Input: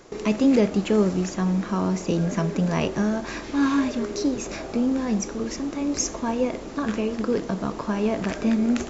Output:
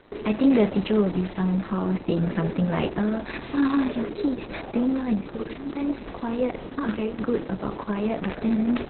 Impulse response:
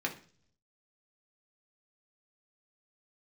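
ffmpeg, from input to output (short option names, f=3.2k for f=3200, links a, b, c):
-filter_complex "[0:a]asplit=3[a][b][c];[a]afade=t=out:st=5.34:d=0.02[d];[b]bandreject=f=45.31:t=h:w=4,bandreject=f=90.62:t=h:w=4,bandreject=f=135.93:t=h:w=4,bandreject=f=181.24:t=h:w=4,bandreject=f=226.55:t=h:w=4,bandreject=f=271.86:t=h:w=4,bandreject=f=317.17:t=h:w=4,bandreject=f=362.48:t=h:w=4,bandreject=f=407.79:t=h:w=4,bandreject=f=453.1:t=h:w=4,bandreject=f=498.41:t=h:w=4,bandreject=f=543.72:t=h:w=4,bandreject=f=589.03:t=h:w=4,bandreject=f=634.34:t=h:w=4,bandreject=f=679.65:t=h:w=4,bandreject=f=724.96:t=h:w=4,bandreject=f=770.27:t=h:w=4,afade=t=in:st=5.34:d=0.02,afade=t=out:st=6.05:d=0.02[e];[c]afade=t=in:st=6.05:d=0.02[f];[d][e][f]amix=inputs=3:normalize=0" -ar 48000 -c:a libopus -b:a 6k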